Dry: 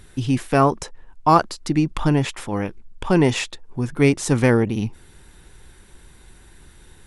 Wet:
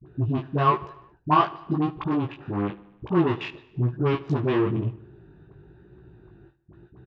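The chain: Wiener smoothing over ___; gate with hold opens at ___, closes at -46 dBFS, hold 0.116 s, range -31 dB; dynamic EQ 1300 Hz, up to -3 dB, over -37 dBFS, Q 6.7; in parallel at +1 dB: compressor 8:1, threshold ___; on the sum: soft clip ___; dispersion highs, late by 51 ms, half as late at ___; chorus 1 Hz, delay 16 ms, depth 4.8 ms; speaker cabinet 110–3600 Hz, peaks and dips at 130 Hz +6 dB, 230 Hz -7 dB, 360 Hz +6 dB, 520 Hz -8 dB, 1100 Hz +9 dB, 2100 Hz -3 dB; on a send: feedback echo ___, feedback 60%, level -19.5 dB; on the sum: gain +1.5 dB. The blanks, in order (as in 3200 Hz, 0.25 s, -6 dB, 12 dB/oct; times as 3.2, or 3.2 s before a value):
41 samples, -39 dBFS, -30 dBFS, -17 dBFS, 540 Hz, 75 ms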